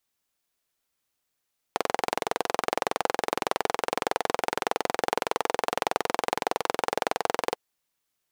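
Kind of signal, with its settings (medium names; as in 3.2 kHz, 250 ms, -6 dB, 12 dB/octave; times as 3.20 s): single-cylinder engine model, steady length 5.80 s, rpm 2600, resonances 490/740 Hz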